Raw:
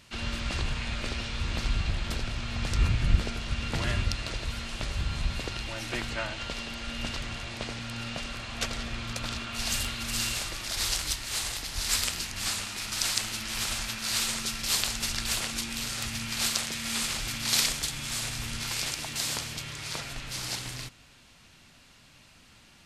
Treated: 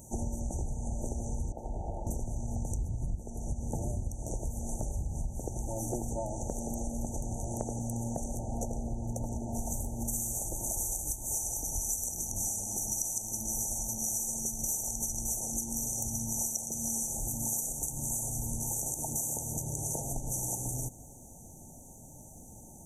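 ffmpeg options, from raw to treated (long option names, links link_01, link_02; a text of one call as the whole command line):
ffmpeg -i in.wav -filter_complex "[0:a]asettb=1/sr,asplit=3[link_01][link_02][link_03];[link_01]atrim=end=1.524[link_04];[link_02]atrim=start=1.52:end=2.07,asetpts=PTS-STARTPTS,afade=type=in:duration=0.004:curve=qsin,afade=type=out:start_time=0.546:duration=0.004:curve=qsin,acrossover=split=390 2300:gain=0.178 1 0.0794[link_05][link_06][link_07];[link_05][link_06][link_07]amix=inputs=3:normalize=0[link_08];[link_03]atrim=start=2.066[link_09];[link_04][link_08]acrossfade=duration=0.004:curve1=hsin:curve2=qsin[link_10];[link_10][link_09]acrossfade=duration=0.004:curve1=qsin:curve2=hsin,asettb=1/sr,asplit=3[link_11][link_12][link_13];[link_11]atrim=end=8.394[link_14];[link_12]atrim=start=8.39:end=10.08,asetpts=PTS-STARTPTS,afade=type=in:duration=0.004:curve=qsin,afade=type=out:start_time=1.686:duration=0.004:curve=qsin,highshelf=frequency=3700:gain=-10.5[link_15];[link_13]atrim=start=10.076[link_16];[link_14][link_15]acrossfade=duration=0.004:curve1=hsin:curve2=qsin[link_17];[link_17][link_16]acrossfade=duration=0.004:curve1=qsin:curve2=hsin,asettb=1/sr,asplit=3[link_18][link_19][link_20];[link_18]atrim=end=11.344[link_21];[link_19]atrim=start=11.34:end=17.12,asetpts=PTS-STARTPTS,afade=type=in:duration=0.004:curve=qsin,afade=type=out:start_time=5.776:duration=0.004:curve=qsin,equalizer=frequency=5800:width_type=o:width=0.23:gain=8.5[link_22];[link_20]atrim=start=17.116[link_23];[link_21][link_22]acrossfade=duration=0.004:curve1=hsin:curve2=qsin[link_24];[link_24][link_23]acrossfade=duration=0.004:curve1=qsin:curve2=hsin,afftfilt=real='re*(1-between(b*sr/4096,920,5800))':imag='im*(1-between(b*sr/4096,920,5800))':win_size=4096:overlap=0.75,highshelf=frequency=11000:gain=9.5,acompressor=threshold=-39dB:ratio=10,volume=8.5dB" out.wav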